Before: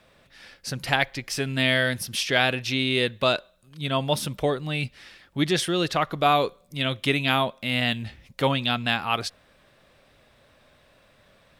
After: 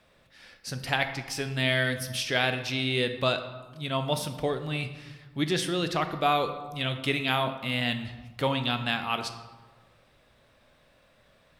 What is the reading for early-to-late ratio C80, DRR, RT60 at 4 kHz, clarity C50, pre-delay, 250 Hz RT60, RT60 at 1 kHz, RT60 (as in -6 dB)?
11.5 dB, 7.5 dB, 0.75 s, 10.0 dB, 13 ms, 1.5 s, 1.4 s, 1.3 s